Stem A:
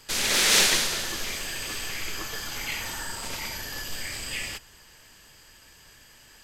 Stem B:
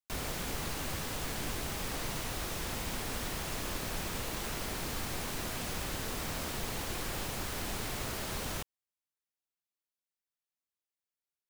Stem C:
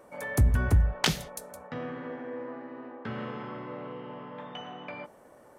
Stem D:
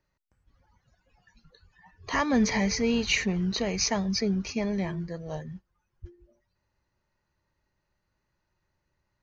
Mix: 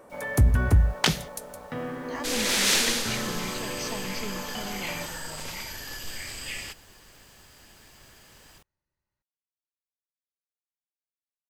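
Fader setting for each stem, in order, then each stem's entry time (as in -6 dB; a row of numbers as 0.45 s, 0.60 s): -3.0 dB, -19.0 dB, +3.0 dB, -11.0 dB; 2.15 s, 0.00 s, 0.00 s, 0.00 s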